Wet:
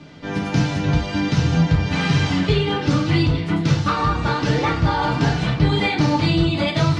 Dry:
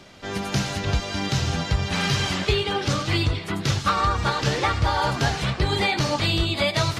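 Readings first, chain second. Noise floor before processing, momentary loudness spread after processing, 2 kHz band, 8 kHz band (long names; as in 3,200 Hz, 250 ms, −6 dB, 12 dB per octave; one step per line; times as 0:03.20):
−34 dBFS, 3 LU, +1.5 dB, −4.5 dB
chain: high-frequency loss of the air 91 metres
feedback delay network reverb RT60 0.35 s, low-frequency decay 0.8×, high-frequency decay 0.95×, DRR −1.5 dB
in parallel at −11.5 dB: soft clipping −16.5 dBFS, distortion −14 dB
on the sum: parametric band 180 Hz +12.5 dB 1.3 octaves
level −4 dB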